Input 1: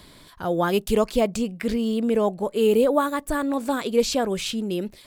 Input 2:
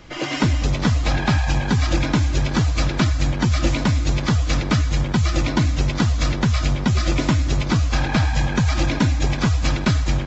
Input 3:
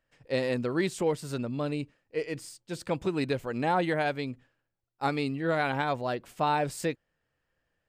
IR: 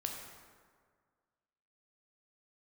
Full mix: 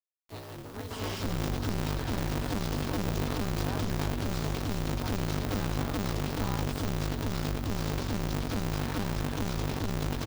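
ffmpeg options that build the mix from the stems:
-filter_complex "[0:a]adelay=300,volume=-19.5dB[a];[1:a]aecho=1:1:5.9:0.56,aeval=exprs='(tanh(20*val(0)+0.55)-tanh(0.55))/20':c=same,adelay=800,volume=-3dB[b];[2:a]aeval=exprs='clip(val(0),-1,0.02)':c=same,volume=-6.5dB[c];[a][b][c]amix=inputs=3:normalize=0,acrusher=bits=7:mix=0:aa=0.000001,equalizer=f=500:t=o:w=1:g=-9,equalizer=f=2k:t=o:w=1:g=-10,equalizer=f=8k:t=o:w=1:g=-6,aeval=exprs='val(0)*sgn(sin(2*PI*100*n/s))':c=same"

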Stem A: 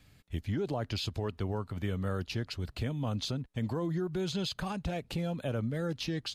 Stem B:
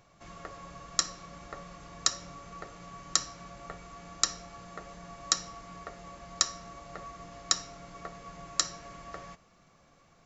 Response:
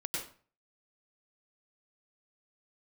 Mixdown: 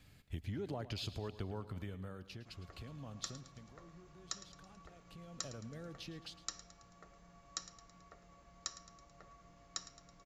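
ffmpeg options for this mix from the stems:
-filter_complex "[0:a]acompressor=threshold=-36dB:ratio=6,volume=10dB,afade=t=out:st=1.49:d=0.8:silence=0.398107,afade=t=out:st=3.32:d=0.36:silence=0.281838,afade=t=in:st=5.05:d=0.51:silence=0.251189,asplit=2[a][b];[b]volume=-15dB[c];[1:a]lowshelf=f=140:g=6,adelay=2250,volume=-16.5dB,asplit=2[d][e];[e]volume=-15.5dB[f];[c][f]amix=inputs=2:normalize=0,aecho=0:1:109|218|327|436|545|654|763|872:1|0.54|0.292|0.157|0.085|0.0459|0.0248|0.0134[g];[a][d][g]amix=inputs=3:normalize=0"

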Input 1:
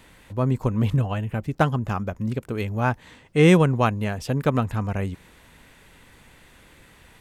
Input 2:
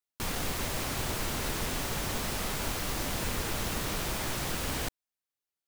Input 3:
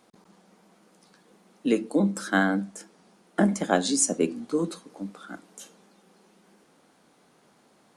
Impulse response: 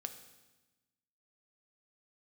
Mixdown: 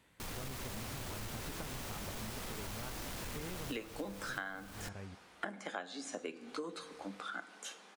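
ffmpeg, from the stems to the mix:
-filter_complex "[0:a]highpass=62,acompressor=threshold=-27dB:ratio=6,volume=-16dB[a];[1:a]asoftclip=type=tanh:threshold=-28.5dB,volume=-7.5dB[b];[2:a]acrossover=split=3100[c][d];[d]acompressor=threshold=-39dB:ratio=4:attack=1:release=60[e];[c][e]amix=inputs=2:normalize=0,bandpass=f=2.2k:t=q:w=0.65:csg=0,adelay=2050,volume=3dB,asplit=2[f][g];[g]volume=-3.5dB[h];[3:a]atrim=start_sample=2205[i];[h][i]afir=irnorm=-1:irlink=0[j];[a][b][f][j]amix=inputs=4:normalize=0,acompressor=threshold=-38dB:ratio=12"

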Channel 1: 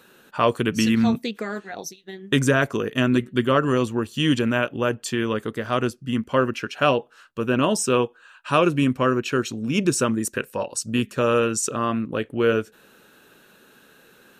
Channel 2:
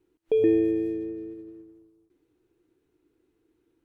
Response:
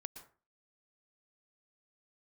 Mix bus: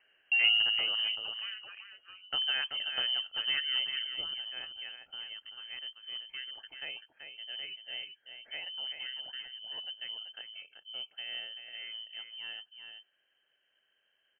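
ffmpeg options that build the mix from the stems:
-filter_complex "[0:a]asubboost=boost=9.5:cutoff=110,volume=-15dB,afade=t=out:st=3.95:d=0.37:silence=0.375837,asplit=2[a][b];[b]volume=-7dB[c];[1:a]volume=-5.5dB[d];[c]aecho=0:1:384:1[e];[a][d][e]amix=inputs=3:normalize=0,lowpass=f=2.7k:t=q:w=0.5098,lowpass=f=2.7k:t=q:w=0.6013,lowpass=f=2.7k:t=q:w=0.9,lowpass=f=2.7k:t=q:w=2.563,afreqshift=-3200"

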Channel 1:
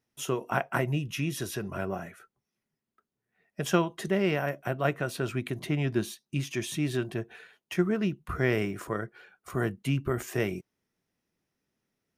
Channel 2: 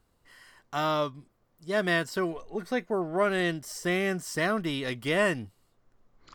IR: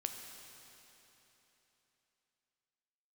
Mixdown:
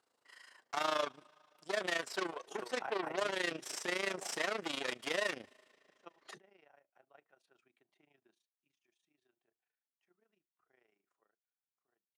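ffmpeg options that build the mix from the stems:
-filter_complex "[0:a]equalizer=f=810:w=6.2:g=9.5,adelay=2300,volume=-2.5dB,afade=t=in:st=6.25:d=0.21:silence=0.316228,afade=t=out:st=8.02:d=0.6:silence=0.354813,afade=t=out:st=11.13:d=0.44:silence=0.375837[a];[1:a]highshelf=f=9.5k:g=8.5,alimiter=limit=-18.5dB:level=0:latency=1:release=224,aeval=exprs='0.119*(cos(1*acos(clip(val(0)/0.119,-1,1)))-cos(1*PI/2))+0.00944*(cos(5*acos(clip(val(0)/0.119,-1,1)))-cos(5*PI/2))+0.0266*(cos(8*acos(clip(val(0)/0.119,-1,1)))-cos(8*PI/2))':c=same,volume=-4dB,asplit=3[b][c][d];[c]volume=-19dB[e];[d]apad=whole_len=638384[f];[a][f]sidechaingate=range=-30dB:threshold=-57dB:ratio=16:detection=peak[g];[2:a]atrim=start_sample=2205[h];[e][h]afir=irnorm=-1:irlink=0[i];[g][b][i]amix=inputs=3:normalize=0,tremolo=f=27:d=0.788,highpass=440,lowpass=7.4k"

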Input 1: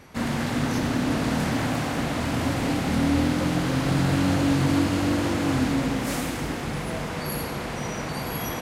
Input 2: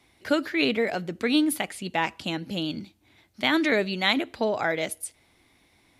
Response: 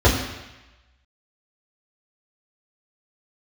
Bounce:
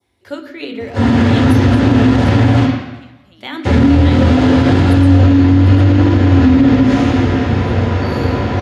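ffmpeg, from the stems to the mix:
-filter_complex "[0:a]highpass=f=83:w=0.5412,highpass=f=83:w=1.3066,lowpass=6.1k,adelay=800,volume=2.5dB,asplit=3[a][b][c];[a]atrim=end=2.66,asetpts=PTS-STARTPTS,afade=t=out:st=2.656:d=0.004:c=hsin[d];[b]atrim=start=2.66:end=3.65,asetpts=PTS-STARTPTS,volume=0[e];[c]atrim=start=3.65,asetpts=PTS-STARTPTS,afade=t=in:d=0.004:c=hsin[f];[d][e][f]concat=n=3:v=0:a=1,asplit=2[g][h];[h]volume=-15dB[i];[1:a]highpass=f=170:p=1,volume=-6.5dB,asplit=4[j][k][l][m];[k]volume=-23dB[n];[l]volume=-14dB[o];[m]apad=whole_len=415266[p];[g][p]sidechaingate=range=-33dB:threshold=-55dB:ratio=16:detection=peak[q];[2:a]atrim=start_sample=2205[r];[i][n]amix=inputs=2:normalize=0[s];[s][r]afir=irnorm=-1:irlink=0[t];[o]aecho=0:1:746:1[u];[q][j][t][u]amix=inputs=4:normalize=0,adynamicequalizer=threshold=0.0316:dfrequency=2500:dqfactor=0.86:tfrequency=2500:tqfactor=0.86:attack=5:release=100:ratio=0.375:range=2.5:mode=boostabove:tftype=bell,alimiter=limit=-2dB:level=0:latency=1:release=63"

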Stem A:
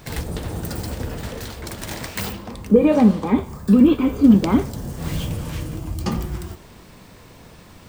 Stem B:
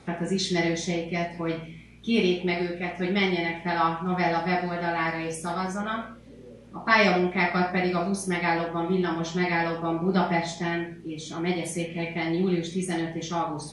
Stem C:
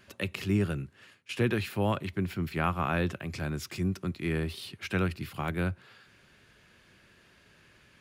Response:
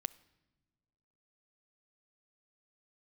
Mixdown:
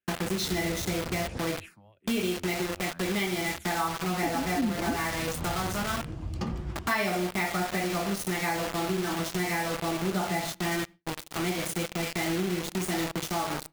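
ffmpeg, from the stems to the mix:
-filter_complex "[0:a]adynamicsmooth=sensitivity=3.5:basefreq=4.9k,adelay=350,volume=-8dB,asplit=3[a][b][c];[a]atrim=end=1.39,asetpts=PTS-STARTPTS,afade=t=out:st=1.386:d=0.004:c=hsin[d];[b]atrim=start=1.39:end=4.23,asetpts=PTS-STARTPTS,volume=0[e];[c]atrim=start=4.23,asetpts=PTS-STARTPTS,afade=t=in:d=0.004:c=hsin[f];[d][e][f]concat=n=3:v=0:a=1,asplit=2[g][h];[h]volume=-13.5dB[i];[1:a]acrusher=bits=4:mix=0:aa=0.000001,volume=-0.5dB,asplit=2[j][k];[k]volume=-6.5dB[l];[2:a]acompressor=threshold=-33dB:ratio=5,alimiter=level_in=10dB:limit=-24dB:level=0:latency=1:release=42,volume=-10dB,asplit=2[m][n];[n]afreqshift=-2.5[o];[m][o]amix=inputs=2:normalize=1,volume=0.5dB[p];[3:a]atrim=start_sample=2205[q];[i][l]amix=inputs=2:normalize=0[r];[r][q]afir=irnorm=-1:irlink=0[s];[g][j][p][s]amix=inputs=4:normalize=0,agate=range=-33dB:threshold=-34dB:ratio=3:detection=peak,acompressor=threshold=-28dB:ratio=3"

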